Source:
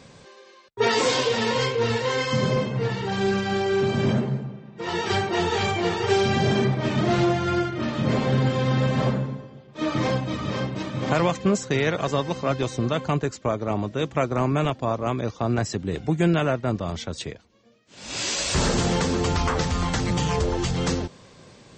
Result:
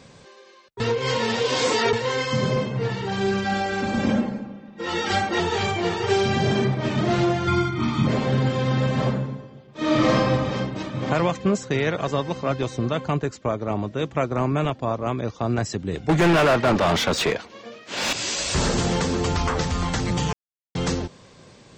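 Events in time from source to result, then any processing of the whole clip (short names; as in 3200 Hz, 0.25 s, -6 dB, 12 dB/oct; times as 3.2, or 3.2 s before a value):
0.8–1.93 reverse
3.44–5.4 comb 3.7 ms, depth 85%
7.47–8.07 comb 0.9 ms, depth 98%
9.79–10.25 reverb throw, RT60 1.4 s, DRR -5 dB
10.87–15.34 high shelf 5400 Hz -5.5 dB
16.09–18.13 overdrive pedal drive 31 dB, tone 2400 Hz, clips at -10.5 dBFS
20.33–20.75 mute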